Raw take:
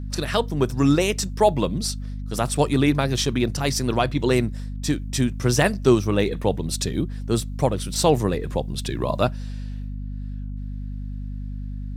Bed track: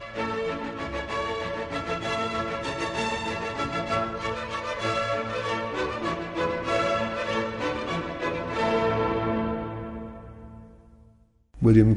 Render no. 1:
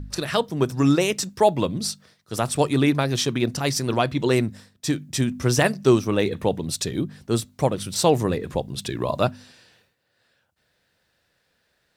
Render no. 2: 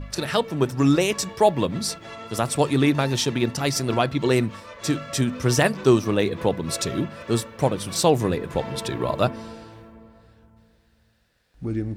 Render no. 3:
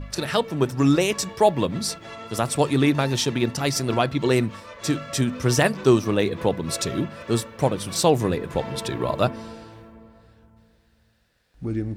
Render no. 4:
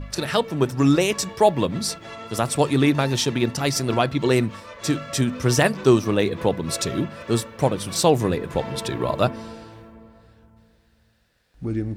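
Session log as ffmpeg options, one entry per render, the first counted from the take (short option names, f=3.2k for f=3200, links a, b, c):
-af "bandreject=f=50:t=h:w=4,bandreject=f=100:t=h:w=4,bandreject=f=150:t=h:w=4,bandreject=f=200:t=h:w=4,bandreject=f=250:t=h:w=4"
-filter_complex "[1:a]volume=-10.5dB[a];[0:a][a]amix=inputs=2:normalize=0"
-af anull
-af "volume=1dB"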